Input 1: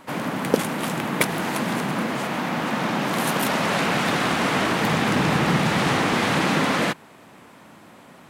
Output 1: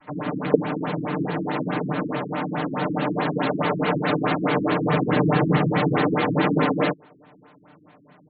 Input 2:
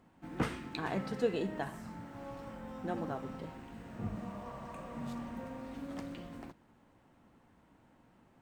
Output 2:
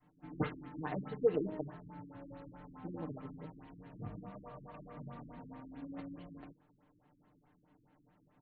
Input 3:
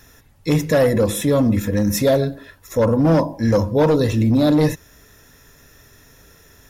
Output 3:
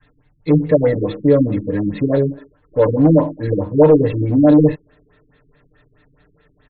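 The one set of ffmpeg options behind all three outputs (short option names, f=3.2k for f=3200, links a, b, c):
-filter_complex "[0:a]aecho=1:1:6.7:0.95,adynamicequalizer=threshold=0.0398:dfrequency=440:dqfactor=0.86:tfrequency=440:tqfactor=0.86:attack=5:release=100:ratio=0.375:range=3:mode=boostabove:tftype=bell,asplit=2[a][b];[b]aeval=exprs='sgn(val(0))*max(abs(val(0))-0.0299,0)':c=same,volume=-7dB[c];[a][c]amix=inputs=2:normalize=0,afftfilt=real='re*lt(b*sr/1024,370*pow(4600/370,0.5+0.5*sin(2*PI*4.7*pts/sr)))':imag='im*lt(b*sr/1024,370*pow(4600/370,0.5+0.5*sin(2*PI*4.7*pts/sr)))':win_size=1024:overlap=0.75,volume=-7dB"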